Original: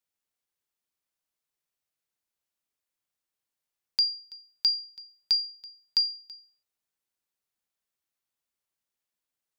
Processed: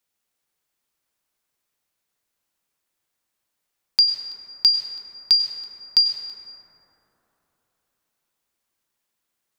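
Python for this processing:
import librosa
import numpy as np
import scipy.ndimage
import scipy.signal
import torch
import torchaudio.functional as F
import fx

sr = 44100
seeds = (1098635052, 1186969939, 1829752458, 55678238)

y = fx.hum_notches(x, sr, base_hz=60, count=3)
y = fx.rev_plate(y, sr, seeds[0], rt60_s=3.9, hf_ratio=0.25, predelay_ms=85, drr_db=2.5)
y = F.gain(torch.from_numpy(y), 8.0).numpy()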